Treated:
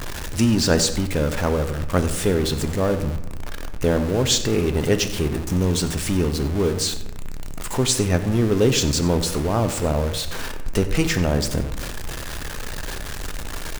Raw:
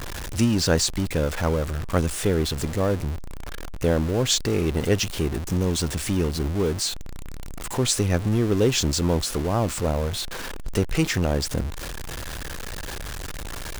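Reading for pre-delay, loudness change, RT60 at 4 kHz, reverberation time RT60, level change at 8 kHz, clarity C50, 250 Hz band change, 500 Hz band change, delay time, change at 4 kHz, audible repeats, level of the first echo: 3 ms, +2.5 dB, 0.60 s, 1.0 s, +2.5 dB, 10.5 dB, +3.0 dB, +3.0 dB, 94 ms, +2.5 dB, 1, -16.5 dB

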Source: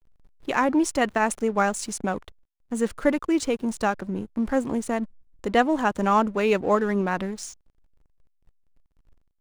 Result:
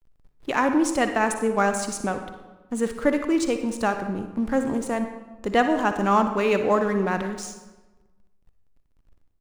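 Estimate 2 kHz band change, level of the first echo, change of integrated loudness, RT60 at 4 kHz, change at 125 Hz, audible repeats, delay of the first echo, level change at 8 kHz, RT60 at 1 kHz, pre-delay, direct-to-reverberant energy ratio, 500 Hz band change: +1.0 dB, -14.5 dB, +0.5 dB, 0.80 s, +0.5 dB, 1, 60 ms, +0.5 dB, 1.2 s, 39 ms, 7.0 dB, +1.0 dB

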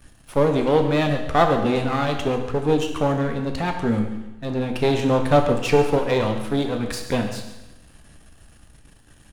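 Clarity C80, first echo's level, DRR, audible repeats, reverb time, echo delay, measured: 8.5 dB, -15.5 dB, 4.0 dB, 1, 0.95 s, 139 ms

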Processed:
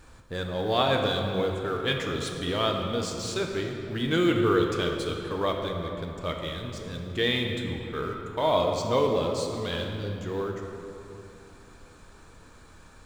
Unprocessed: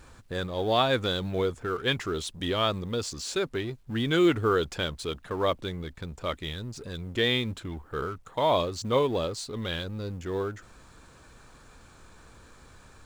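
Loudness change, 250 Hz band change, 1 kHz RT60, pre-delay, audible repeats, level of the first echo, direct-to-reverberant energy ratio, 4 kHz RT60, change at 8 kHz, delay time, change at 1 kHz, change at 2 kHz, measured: +1.0 dB, +1.0 dB, 2.9 s, 5 ms, no echo, no echo, 1.5 dB, 1.9 s, -0.5 dB, no echo, +1.0 dB, +0.5 dB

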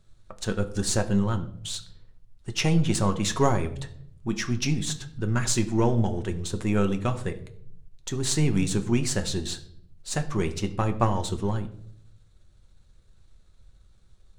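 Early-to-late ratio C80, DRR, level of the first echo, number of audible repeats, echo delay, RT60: 17.0 dB, 6.0 dB, no echo, no echo, no echo, 0.65 s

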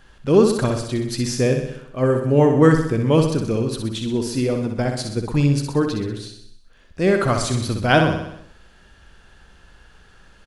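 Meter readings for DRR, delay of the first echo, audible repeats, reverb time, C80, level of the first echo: no reverb, 63 ms, 6, no reverb, no reverb, -6.0 dB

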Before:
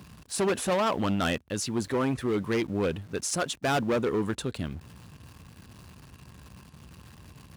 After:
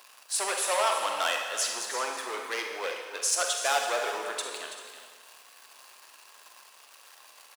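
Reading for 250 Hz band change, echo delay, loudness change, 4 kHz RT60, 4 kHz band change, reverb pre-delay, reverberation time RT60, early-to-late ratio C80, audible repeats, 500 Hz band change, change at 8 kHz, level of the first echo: -21.5 dB, 330 ms, -0.5 dB, 1.5 s, +4.5 dB, 37 ms, 1.5 s, 4.5 dB, 2, -4.5 dB, +6.5 dB, -11.5 dB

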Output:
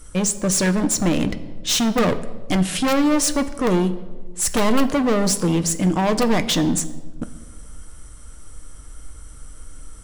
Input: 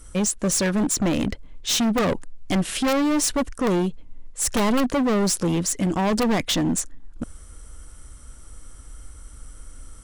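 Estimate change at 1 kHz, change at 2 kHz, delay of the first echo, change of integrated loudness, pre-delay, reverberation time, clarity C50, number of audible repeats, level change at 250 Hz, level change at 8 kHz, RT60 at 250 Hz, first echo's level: +2.5 dB, +2.5 dB, no echo, +2.5 dB, 6 ms, 1.2 s, 14.5 dB, no echo, +2.5 dB, +2.5 dB, 1.5 s, no echo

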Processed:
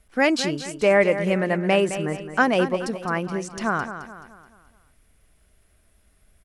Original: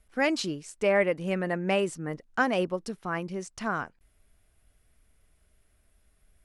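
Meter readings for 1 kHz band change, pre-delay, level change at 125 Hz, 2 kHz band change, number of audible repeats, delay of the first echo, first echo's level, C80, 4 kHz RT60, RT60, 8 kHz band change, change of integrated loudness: +6.5 dB, no reverb, +6.5 dB, +6.5 dB, 4, 214 ms, -11.0 dB, no reverb, no reverb, no reverb, +6.5 dB, +6.5 dB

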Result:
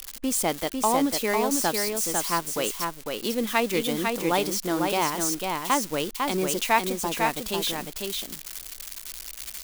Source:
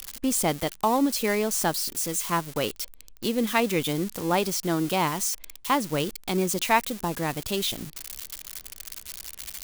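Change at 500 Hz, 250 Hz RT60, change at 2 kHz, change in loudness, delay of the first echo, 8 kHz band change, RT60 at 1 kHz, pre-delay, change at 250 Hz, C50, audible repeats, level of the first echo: +1.0 dB, no reverb, +1.5 dB, +0.5 dB, 500 ms, +1.5 dB, no reverb, no reverb, -1.0 dB, no reverb, 1, -4.0 dB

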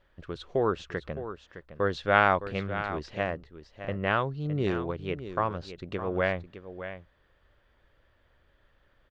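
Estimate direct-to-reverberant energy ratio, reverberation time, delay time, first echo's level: no reverb, no reverb, 612 ms, -11.5 dB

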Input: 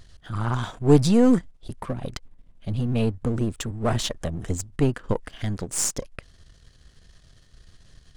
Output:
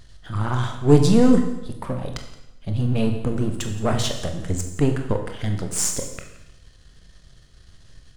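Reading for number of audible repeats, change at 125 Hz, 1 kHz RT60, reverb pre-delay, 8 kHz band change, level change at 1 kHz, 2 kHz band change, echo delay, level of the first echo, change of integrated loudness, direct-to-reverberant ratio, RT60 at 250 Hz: 1, +3.0 dB, 0.90 s, 21 ms, +2.5 dB, +2.0 dB, +2.5 dB, 173 ms, -18.5 dB, +2.0 dB, 4.5 dB, 0.90 s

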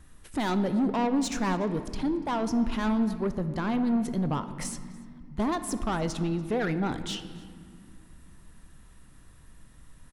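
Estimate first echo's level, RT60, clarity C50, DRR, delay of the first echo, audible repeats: -23.0 dB, 2.1 s, 11.5 dB, 10.0 dB, 289 ms, 1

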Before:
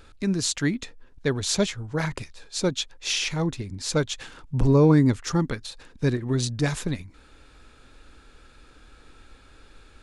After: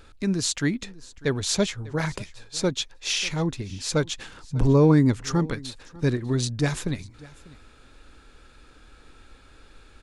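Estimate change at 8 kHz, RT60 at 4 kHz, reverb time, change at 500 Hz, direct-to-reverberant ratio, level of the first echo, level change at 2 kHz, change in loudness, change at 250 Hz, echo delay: 0.0 dB, no reverb, no reverb, 0.0 dB, no reverb, -21.5 dB, 0.0 dB, 0.0 dB, 0.0 dB, 596 ms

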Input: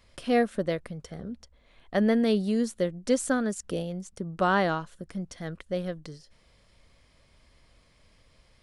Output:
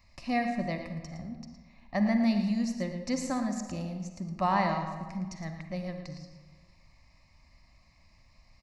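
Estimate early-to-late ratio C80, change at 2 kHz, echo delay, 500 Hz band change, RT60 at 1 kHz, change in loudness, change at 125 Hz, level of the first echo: 6.5 dB, -4.5 dB, 113 ms, -9.0 dB, 1.5 s, -3.5 dB, -0.5 dB, -10.5 dB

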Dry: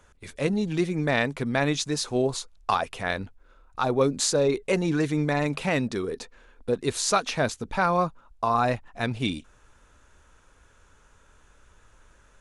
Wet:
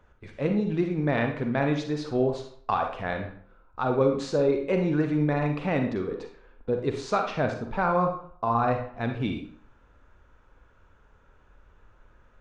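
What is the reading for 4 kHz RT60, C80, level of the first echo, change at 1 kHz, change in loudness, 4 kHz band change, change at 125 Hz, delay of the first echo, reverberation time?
0.40 s, 10.0 dB, no echo, -1.0 dB, -1.0 dB, -10.5 dB, +0.5 dB, no echo, 0.55 s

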